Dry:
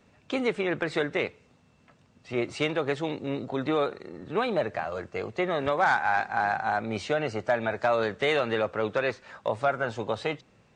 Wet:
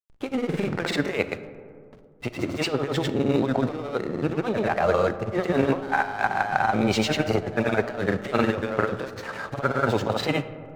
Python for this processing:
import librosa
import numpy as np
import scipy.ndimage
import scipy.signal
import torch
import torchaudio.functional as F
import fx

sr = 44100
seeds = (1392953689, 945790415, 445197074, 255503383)

y = fx.over_compress(x, sr, threshold_db=-31.0, ratio=-0.5)
y = fx.granulator(y, sr, seeds[0], grain_ms=100.0, per_s=20.0, spray_ms=100.0, spread_st=0)
y = fx.backlash(y, sr, play_db=-43.0)
y = fx.rev_freeverb(y, sr, rt60_s=2.3, hf_ratio=0.3, predelay_ms=0, drr_db=12.0)
y = F.gain(torch.from_numpy(y), 9.0).numpy()